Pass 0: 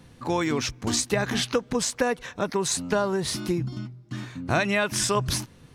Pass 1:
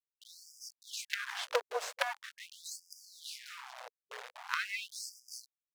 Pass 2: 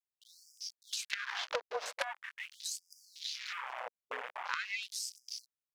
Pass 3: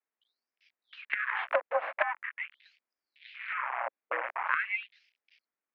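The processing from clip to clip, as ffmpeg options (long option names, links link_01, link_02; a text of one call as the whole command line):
ffmpeg -i in.wav -af "acrusher=bits=3:dc=4:mix=0:aa=0.000001,aemphasis=mode=reproduction:type=75kf,afftfilt=real='re*gte(b*sr/1024,390*pow(4800/390,0.5+0.5*sin(2*PI*0.43*pts/sr)))':imag='im*gte(b*sr/1024,390*pow(4800/390,0.5+0.5*sin(2*PI*0.43*pts/sr)))':win_size=1024:overlap=0.75,volume=-1.5dB" out.wav
ffmpeg -i in.wav -af "afwtdn=0.00282,acompressor=threshold=-49dB:ratio=3,volume=11dB" out.wav
ffmpeg -i in.wav -af "highpass=frequency=160:width_type=q:width=0.5412,highpass=frequency=160:width_type=q:width=1.307,lowpass=frequency=2300:width_type=q:width=0.5176,lowpass=frequency=2300:width_type=q:width=0.7071,lowpass=frequency=2300:width_type=q:width=1.932,afreqshift=60,volume=8.5dB" out.wav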